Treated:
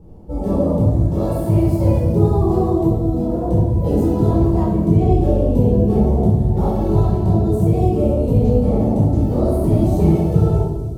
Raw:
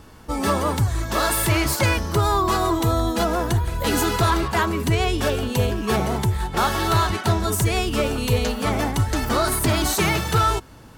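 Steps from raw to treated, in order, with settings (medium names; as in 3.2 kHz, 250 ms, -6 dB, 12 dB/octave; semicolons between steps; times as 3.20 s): FFT filter 120 Hz 0 dB, 180 Hz +4 dB, 670 Hz -2 dB, 1.5 kHz -29 dB, 15 kHz -20 dB; 2.87–3.46 s: compressor with a negative ratio -26 dBFS, ratio -1; feedback echo behind a high-pass 234 ms, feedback 70%, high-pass 4.5 kHz, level -10 dB; simulated room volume 630 m³, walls mixed, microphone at 4.4 m; trim -4.5 dB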